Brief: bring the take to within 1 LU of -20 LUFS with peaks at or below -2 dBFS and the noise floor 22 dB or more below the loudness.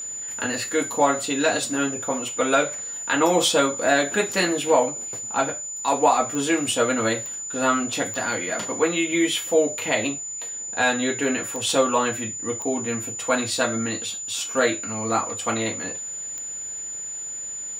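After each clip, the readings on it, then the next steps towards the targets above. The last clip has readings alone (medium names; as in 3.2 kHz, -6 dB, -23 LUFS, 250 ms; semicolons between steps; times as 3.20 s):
clicks found 6; steady tone 7 kHz; tone level -30 dBFS; loudness -23.0 LUFS; peak level -5.5 dBFS; loudness target -20.0 LUFS
-> de-click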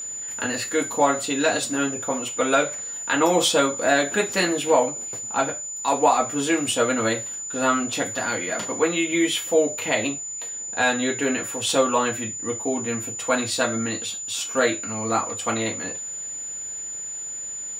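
clicks found 0; steady tone 7 kHz; tone level -30 dBFS
-> band-stop 7 kHz, Q 30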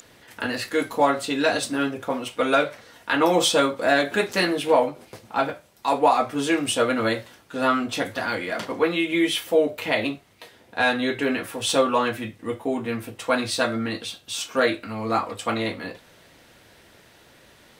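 steady tone not found; loudness -23.5 LUFS; peak level -6.0 dBFS; loudness target -20.0 LUFS
-> trim +3.5 dB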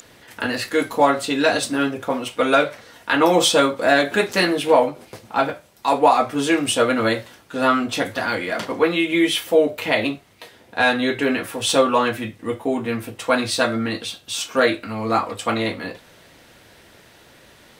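loudness -20.0 LUFS; peak level -2.5 dBFS; noise floor -50 dBFS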